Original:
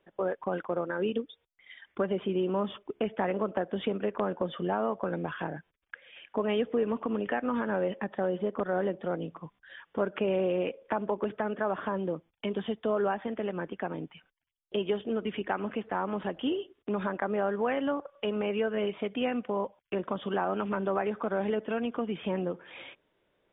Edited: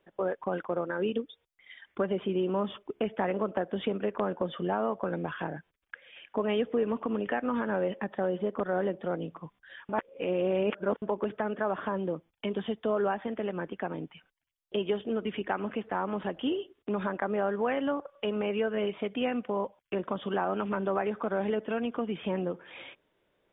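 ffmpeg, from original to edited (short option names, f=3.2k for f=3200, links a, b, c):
-filter_complex "[0:a]asplit=3[a][b][c];[a]atrim=end=9.892[d];[b]atrim=start=9.888:end=11.022,asetpts=PTS-STARTPTS,areverse[e];[c]atrim=start=11.018[f];[d][e]acrossfade=d=0.004:c1=hsin:c2=hsin[g];[g][f]acrossfade=d=0.004:c1=hsin:c2=hsin"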